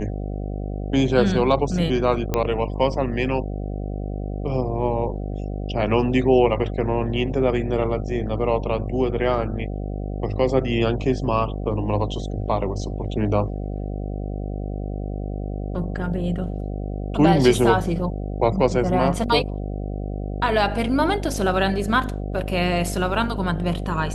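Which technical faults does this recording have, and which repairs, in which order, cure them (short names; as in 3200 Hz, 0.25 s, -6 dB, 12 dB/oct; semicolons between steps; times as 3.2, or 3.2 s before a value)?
buzz 50 Hz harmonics 15 -28 dBFS
2.34 pop -8 dBFS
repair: de-click; de-hum 50 Hz, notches 15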